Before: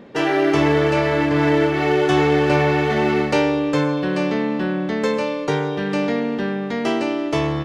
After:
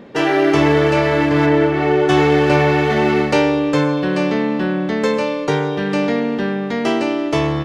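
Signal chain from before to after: 1.45–2.08 s: treble shelf 4.3 kHz -> 2.7 kHz -10.5 dB; trim +3 dB

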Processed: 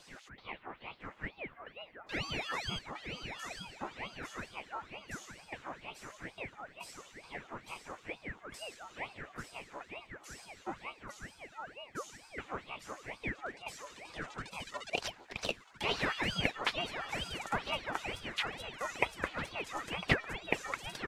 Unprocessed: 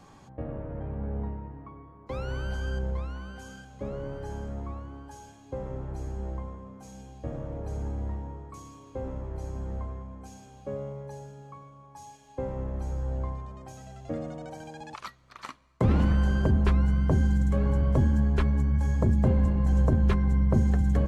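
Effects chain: LFO high-pass sine 5.4 Hz 850–3300 Hz; delay 1003 ms -16 dB; ring modulator with a swept carrier 980 Hz, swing 80%, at 2.2 Hz; trim +5.5 dB

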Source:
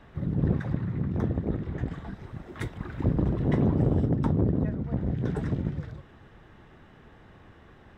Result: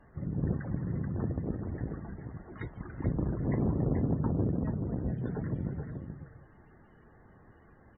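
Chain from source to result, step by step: delay 432 ms -6.5 dB; loudest bins only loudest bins 64; trim -6 dB

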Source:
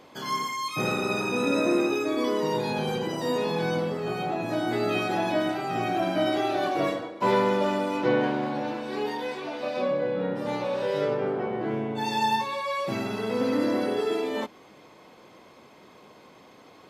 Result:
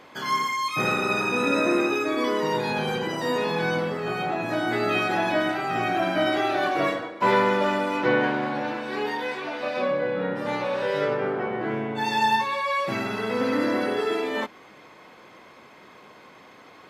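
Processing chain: peaking EQ 1.7 kHz +8 dB 1.5 oct

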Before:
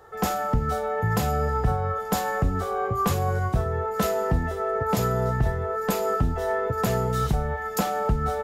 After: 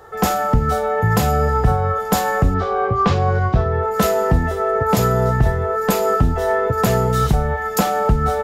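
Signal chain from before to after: 2.54–3.83 s: low-pass 5 kHz 24 dB/octave; trim +7.5 dB

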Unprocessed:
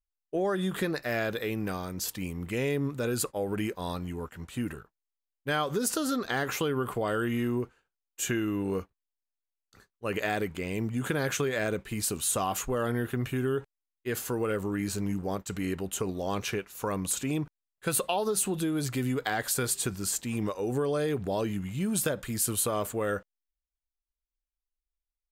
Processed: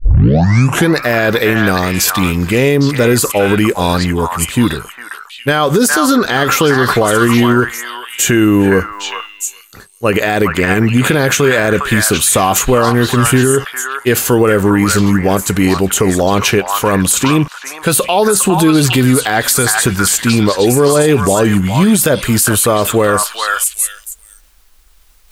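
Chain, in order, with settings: tape start-up on the opening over 0.91 s; reverse; upward compressor, threshold -51 dBFS; reverse; repeats whose band climbs or falls 406 ms, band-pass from 1.3 kHz, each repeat 1.4 oct, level 0 dB; loudness maximiser +22 dB; trim -1 dB

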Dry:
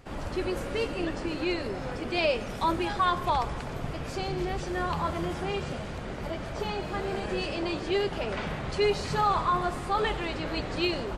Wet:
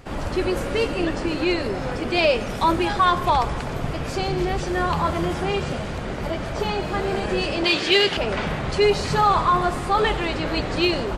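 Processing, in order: 7.64–8.17 s: frequency weighting D; in parallel at -11.5 dB: hard clipper -22.5 dBFS, distortion -15 dB; on the sum: trim +5.5 dB

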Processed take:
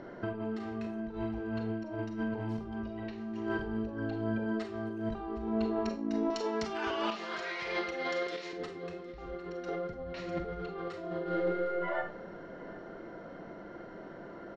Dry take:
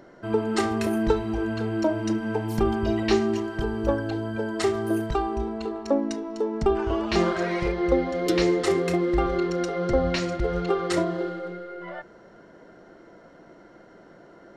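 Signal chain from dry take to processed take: 6.30–8.53 s: frequency weighting ITU-R 468; compressor with a negative ratio -34 dBFS, ratio -1; distance through air 170 m; delay 759 ms -19.5 dB; Schroeder reverb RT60 0.32 s, combs from 32 ms, DRR 5.5 dB; trim -4 dB

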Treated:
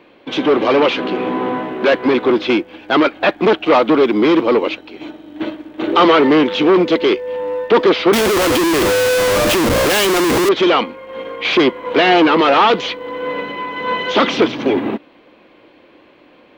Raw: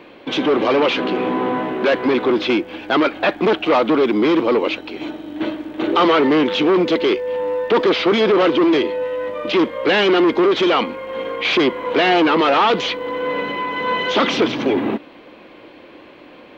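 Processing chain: 8.13–10.49 s: Schmitt trigger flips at -30 dBFS; upward expansion 1.5:1, over -31 dBFS; trim +4.5 dB

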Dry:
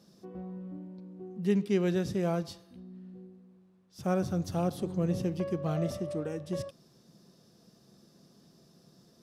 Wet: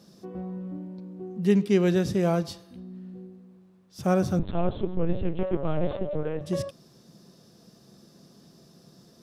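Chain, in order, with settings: 4.39–6.41 s: LPC vocoder at 8 kHz pitch kept; trim +6 dB

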